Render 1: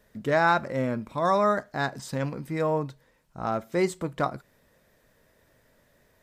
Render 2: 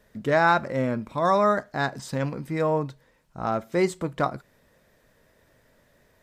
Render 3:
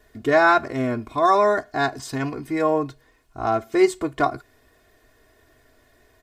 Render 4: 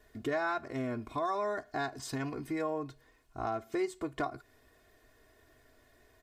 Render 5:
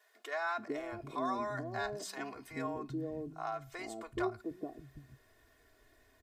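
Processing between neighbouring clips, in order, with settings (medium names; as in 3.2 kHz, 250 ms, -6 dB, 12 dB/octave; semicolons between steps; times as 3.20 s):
treble shelf 10 kHz -4.5 dB; trim +2 dB
comb 2.8 ms, depth 92%; trim +1.5 dB
compression 3:1, threshold -27 dBFS, peak gain reduction 12 dB; trim -6 dB
three bands offset in time highs, mids, lows 430/770 ms, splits 180/550 Hz; trim -1.5 dB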